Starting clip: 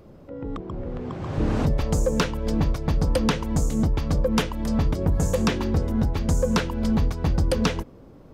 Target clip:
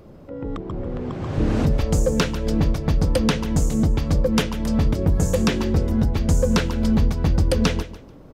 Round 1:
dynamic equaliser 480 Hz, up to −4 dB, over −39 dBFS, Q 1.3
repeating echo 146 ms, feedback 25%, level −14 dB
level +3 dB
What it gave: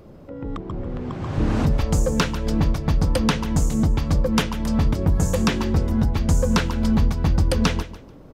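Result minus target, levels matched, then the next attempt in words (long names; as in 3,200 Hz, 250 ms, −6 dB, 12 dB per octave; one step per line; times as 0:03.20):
1,000 Hz band +2.5 dB
dynamic equaliser 990 Hz, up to −4 dB, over −39 dBFS, Q 1.3
repeating echo 146 ms, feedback 25%, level −14 dB
level +3 dB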